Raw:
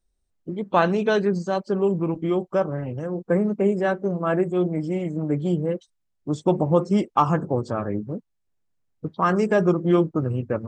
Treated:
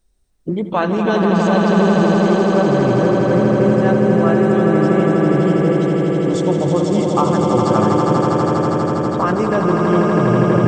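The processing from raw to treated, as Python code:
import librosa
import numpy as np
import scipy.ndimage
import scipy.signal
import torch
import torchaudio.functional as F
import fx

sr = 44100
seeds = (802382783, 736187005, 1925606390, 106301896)

p1 = fx.over_compress(x, sr, threshold_db=-29.0, ratio=-1.0)
p2 = x + (p1 * 10.0 ** (3.0 / 20.0))
p3 = fx.echo_swell(p2, sr, ms=81, loudest=8, wet_db=-6.0)
y = p3 * 10.0 ** (-1.0 / 20.0)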